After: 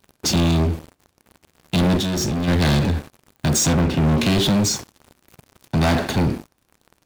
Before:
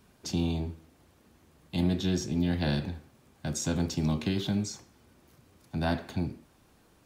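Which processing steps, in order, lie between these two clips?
3.73–4.18 LPF 2800 Hz 24 dB/oct; sample leveller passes 5; 1.97–2.48 level quantiser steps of 24 dB; gain +2 dB

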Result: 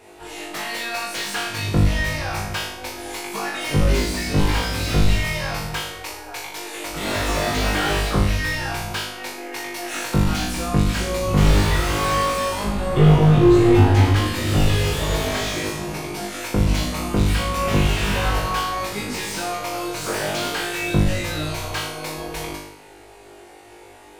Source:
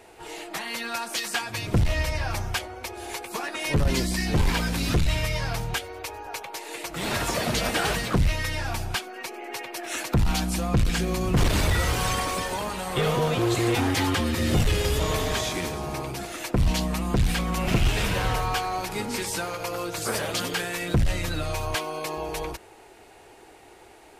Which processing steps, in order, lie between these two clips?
12.64–14.16 tilt -3 dB/oct; on a send: flutter echo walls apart 3.4 m, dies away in 0.69 s; on the sum: slew limiter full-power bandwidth 220 Hz

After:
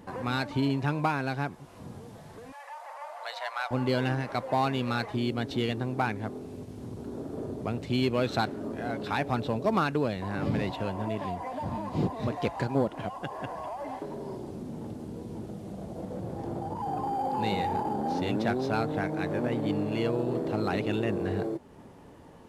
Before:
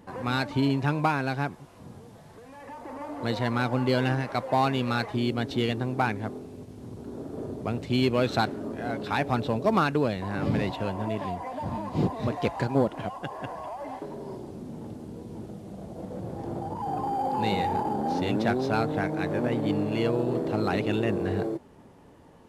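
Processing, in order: in parallel at +0.5 dB: compressor, threshold -39 dBFS, peak gain reduction 19.5 dB; 2.52–3.71 on the sum: elliptic high-pass 640 Hz, stop band 70 dB; gain -4 dB

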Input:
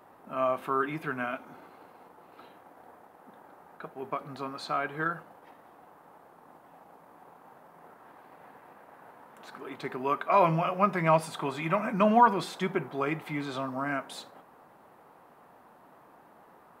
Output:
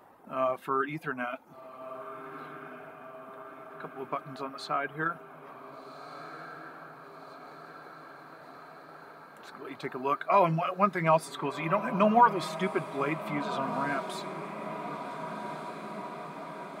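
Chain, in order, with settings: reverb removal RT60 0.79 s; diffused feedback echo 1.546 s, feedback 70%, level -11 dB

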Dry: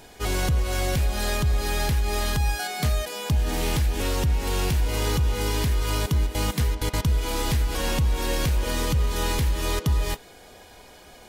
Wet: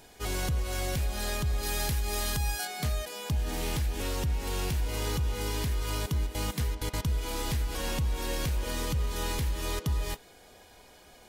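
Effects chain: high shelf 4900 Hz +3.5 dB, from 1.63 s +9 dB, from 2.65 s +2 dB; gain -7 dB

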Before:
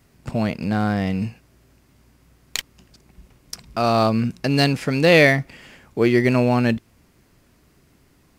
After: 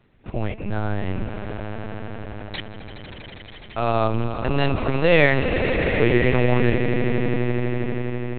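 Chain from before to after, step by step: swelling echo 82 ms, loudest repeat 8, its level -13 dB; LPC vocoder at 8 kHz pitch kept; gain -2.5 dB

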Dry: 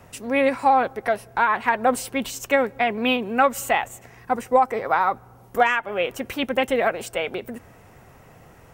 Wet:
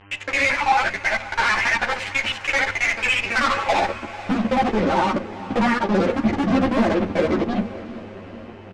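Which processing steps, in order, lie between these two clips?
local time reversal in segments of 55 ms; resonant high shelf 3000 Hz -12 dB, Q 3; comb 3.4 ms, depth 37%; in parallel at -1 dB: limiter -14 dBFS, peak gain reduction 11.5 dB; on the sum: band-pass sweep 3800 Hz -> 200 Hz, 3.19–4.11; fuzz box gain 39 dB, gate -47 dBFS; buzz 100 Hz, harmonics 31, -46 dBFS -2 dB/oct; air absorption 100 m; diffused feedback echo 0.453 s, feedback 61%, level -16 dB; on a send at -10.5 dB: reverb RT60 0.30 s, pre-delay 3 ms; on the sum: ensemble effect

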